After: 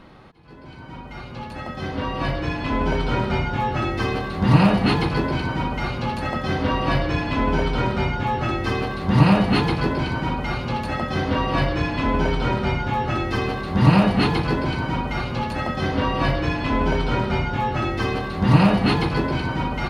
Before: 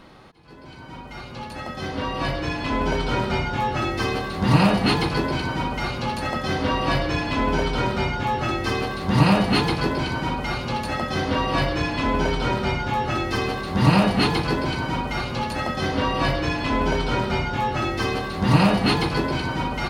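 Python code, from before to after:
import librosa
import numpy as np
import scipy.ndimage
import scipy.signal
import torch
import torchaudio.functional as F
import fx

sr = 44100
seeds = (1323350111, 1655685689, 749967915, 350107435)

y = fx.bass_treble(x, sr, bass_db=3, treble_db=-7)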